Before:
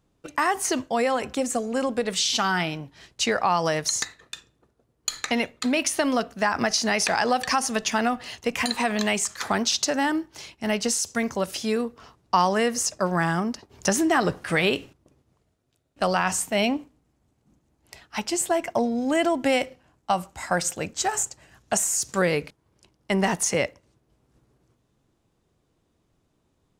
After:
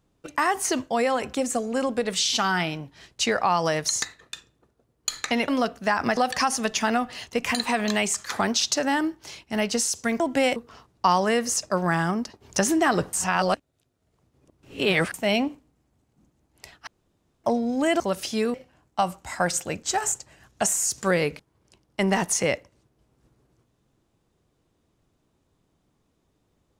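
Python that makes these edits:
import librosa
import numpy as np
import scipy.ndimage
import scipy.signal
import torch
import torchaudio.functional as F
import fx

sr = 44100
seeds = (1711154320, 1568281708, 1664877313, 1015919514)

y = fx.edit(x, sr, fx.cut(start_s=5.48, length_s=0.55),
    fx.cut(start_s=6.72, length_s=0.56),
    fx.swap(start_s=11.31, length_s=0.54, other_s=19.29, other_length_s=0.36),
    fx.reverse_span(start_s=14.42, length_s=2.01),
    fx.room_tone_fill(start_s=18.16, length_s=0.57), tone=tone)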